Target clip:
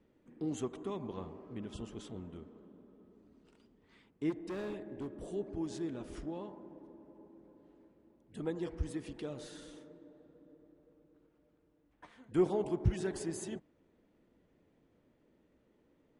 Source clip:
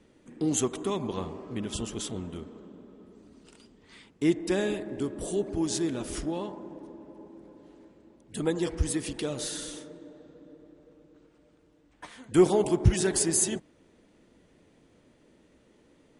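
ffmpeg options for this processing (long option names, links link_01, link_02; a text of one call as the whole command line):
ffmpeg -i in.wav -filter_complex "[0:a]lowpass=frequency=1800:poles=1,asplit=3[link_01][link_02][link_03];[link_01]afade=type=out:start_time=4.29:duration=0.02[link_04];[link_02]volume=27.5dB,asoftclip=hard,volume=-27.5dB,afade=type=in:start_time=4.29:duration=0.02,afade=type=out:start_time=5.06:duration=0.02[link_05];[link_03]afade=type=in:start_time=5.06:duration=0.02[link_06];[link_04][link_05][link_06]amix=inputs=3:normalize=0,volume=-9dB" out.wav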